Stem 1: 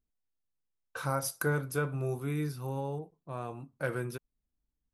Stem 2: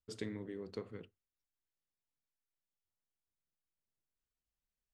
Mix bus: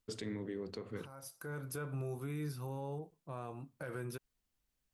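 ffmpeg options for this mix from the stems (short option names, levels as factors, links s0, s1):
-filter_complex "[0:a]alimiter=level_in=1.58:limit=0.0631:level=0:latency=1:release=105,volume=0.631,volume=0.75[s0];[1:a]highpass=f=66:w=0.5412,highpass=f=66:w=1.3066,acontrast=85,volume=0.944,asplit=2[s1][s2];[s2]apad=whole_len=217710[s3];[s0][s3]sidechaincompress=threshold=0.00631:ratio=5:attack=5.3:release=818[s4];[s4][s1]amix=inputs=2:normalize=0,alimiter=level_in=2.51:limit=0.0631:level=0:latency=1:release=118,volume=0.398"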